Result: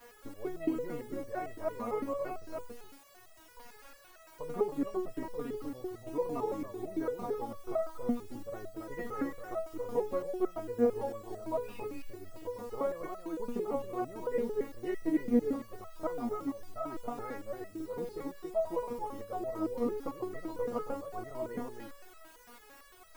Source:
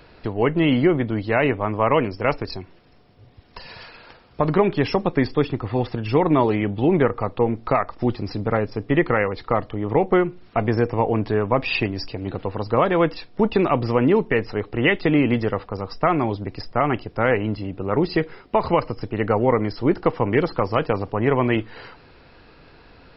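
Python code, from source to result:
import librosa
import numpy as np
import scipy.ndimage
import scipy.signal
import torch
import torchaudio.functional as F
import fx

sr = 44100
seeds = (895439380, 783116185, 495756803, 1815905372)

p1 = x + 0.5 * 10.0 ** (-14.5 / 20.0) * np.diff(np.sign(x), prepend=np.sign(x[:1]))
p2 = scipy.signal.sosfilt(scipy.signal.butter(2, 1000.0, 'lowpass', fs=sr, output='sos'), p1)
p3 = fx.quant_dither(p2, sr, seeds[0], bits=8, dither='triangular')
p4 = p3 + fx.echo_single(p3, sr, ms=278, db=-4.5, dry=0)
y = fx.resonator_held(p4, sr, hz=8.9, low_hz=240.0, high_hz=650.0)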